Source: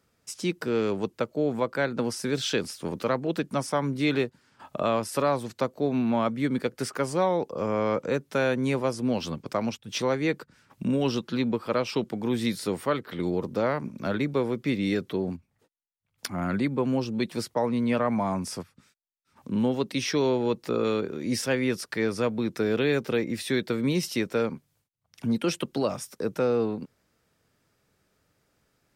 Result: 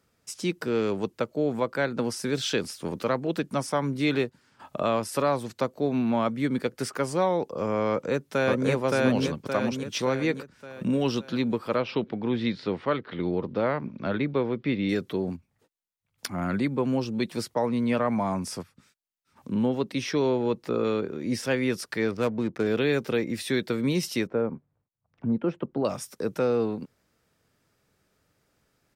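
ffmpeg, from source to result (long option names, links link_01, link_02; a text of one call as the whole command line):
ffmpeg -i in.wav -filter_complex "[0:a]asplit=2[link_01][link_02];[link_02]afade=type=in:start_time=7.9:duration=0.01,afade=type=out:start_time=8.69:duration=0.01,aecho=0:1:570|1140|1710|2280|2850|3420|3990:1|0.5|0.25|0.125|0.0625|0.03125|0.015625[link_03];[link_01][link_03]amix=inputs=2:normalize=0,asettb=1/sr,asplit=3[link_04][link_05][link_06];[link_04]atrim=end=11.764[link_07];[link_05]atrim=start=11.76:end=14.89,asetpts=PTS-STARTPTS,afade=type=in:duration=0.004:curve=qsin,afade=type=out:start_time=3.126:duration=0.004:curve=qsin,lowpass=frequency=4000:width=0.5412,lowpass=frequency=4000:width=1.3066[link_08];[link_06]atrim=start=14.886[link_09];[link_07][link_08]acrossfade=duration=0.004:curve1=hsin:curve2=qsin[link_10];[link_10][link_09]acrossfade=duration=0.004:curve1=qsin:curve2=hsin,asettb=1/sr,asplit=3[link_11][link_12][link_13];[link_11]atrim=end=19.544[link_14];[link_12]atrim=start=19.54:end=21.45,asetpts=PTS-STARTPTS,afade=type=in:duration=0.004:curve=qsin,afade=type=out:start_time=1.906:duration=0.004:curve=qsin,highshelf=frequency=3400:gain=-6.5[link_15];[link_13]atrim=start=21.446[link_16];[link_14][link_15]acrossfade=duration=0.004:curve1=hsin:curve2=qsin[link_17];[link_17][link_16]acrossfade=duration=0.004:curve1=qsin:curve2=hsin,asettb=1/sr,asplit=3[link_18][link_19][link_20];[link_18]atrim=end=22.114[link_21];[link_19]atrim=start=22.11:end=22.67,asetpts=PTS-STARTPTS,afade=type=in:duration=0.004:curve=qsin,afade=type=out:start_time=0.556:duration=0.004:curve=qsin,adynamicsmooth=sensitivity=7:basefreq=740[link_22];[link_20]atrim=start=22.666[link_23];[link_21][link_22]acrossfade=duration=0.004:curve1=hsin:curve2=qsin[link_24];[link_24][link_23]acrossfade=duration=0.004:curve1=qsin:curve2=hsin,asettb=1/sr,asplit=3[link_25][link_26][link_27];[link_25]atrim=end=24.274[link_28];[link_26]atrim=start=24.27:end=25.85,asetpts=PTS-STARTPTS,afade=type=in:duration=0.004:curve=qsin,afade=type=out:start_time=1.576:duration=0.004:curve=qsin,lowpass=1100[link_29];[link_27]atrim=start=25.846[link_30];[link_28][link_29]acrossfade=duration=0.004:curve1=hsin:curve2=qsin[link_31];[link_31][link_30]acrossfade=duration=0.004:curve1=qsin:curve2=hsin" out.wav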